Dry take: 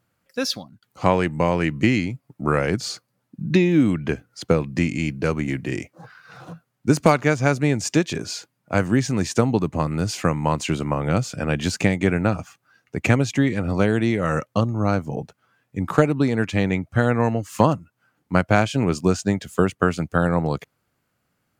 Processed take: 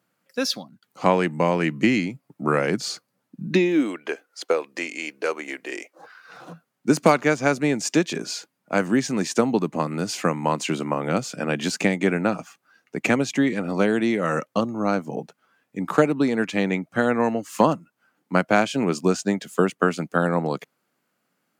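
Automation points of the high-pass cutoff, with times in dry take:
high-pass 24 dB/octave
3.40 s 160 Hz
4.01 s 400 Hz
5.80 s 400 Hz
6.50 s 180 Hz

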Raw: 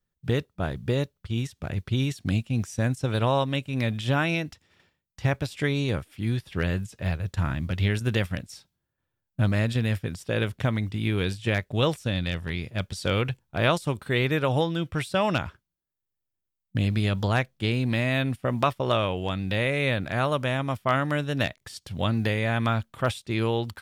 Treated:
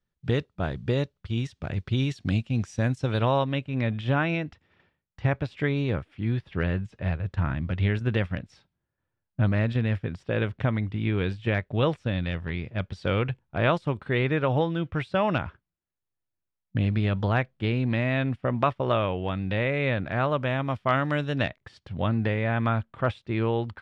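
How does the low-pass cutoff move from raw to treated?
3.06 s 4.9 kHz
3.68 s 2.5 kHz
20.31 s 2.5 kHz
21.25 s 4.8 kHz
21.59 s 2.2 kHz

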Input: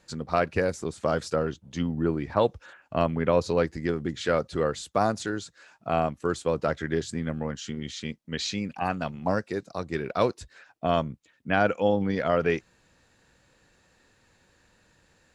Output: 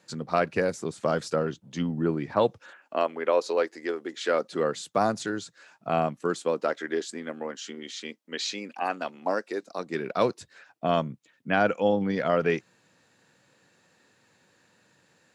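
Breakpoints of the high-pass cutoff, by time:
high-pass 24 dB/octave
2.54 s 120 Hz
3.05 s 340 Hz
4.14 s 340 Hz
4.95 s 120 Hz
6.03 s 120 Hz
6.75 s 280 Hz
9.57 s 280 Hz
10.30 s 120 Hz

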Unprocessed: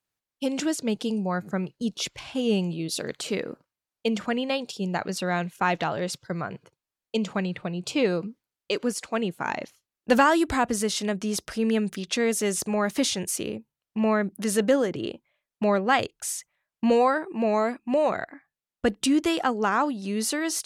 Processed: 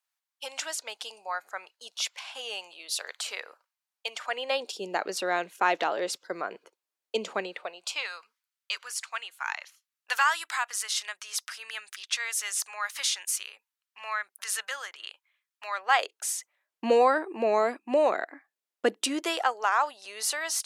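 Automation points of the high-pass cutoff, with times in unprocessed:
high-pass 24 dB/octave
4.20 s 760 Hz
4.71 s 330 Hz
7.40 s 330 Hz
8.09 s 1.1 kHz
15.70 s 1.1 kHz
16.35 s 300 Hz
18.89 s 300 Hz
19.62 s 650 Hz

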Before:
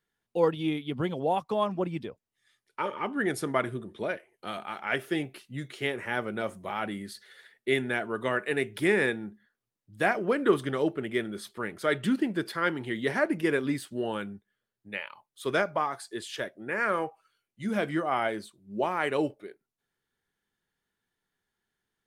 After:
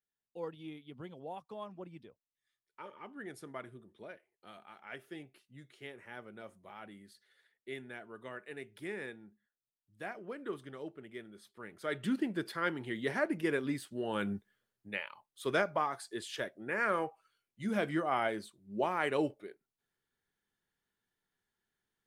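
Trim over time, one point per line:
11.45 s -17 dB
12.14 s -6 dB
14.06 s -6 dB
14.33 s +5.5 dB
15.06 s -4 dB

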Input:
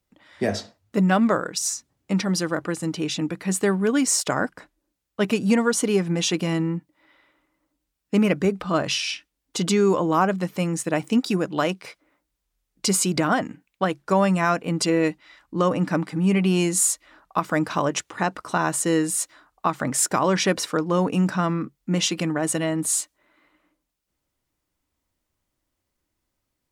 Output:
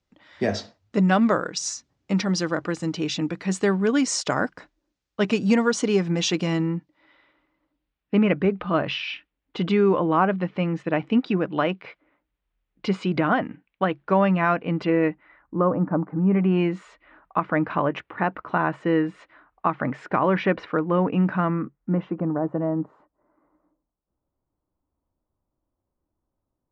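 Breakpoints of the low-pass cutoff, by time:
low-pass 24 dB/octave
6.54 s 6.4 kHz
8.19 s 3.1 kHz
14.70 s 3.1 kHz
16.02 s 1.1 kHz
16.64 s 2.5 kHz
21.40 s 2.5 kHz
22.25 s 1.1 kHz

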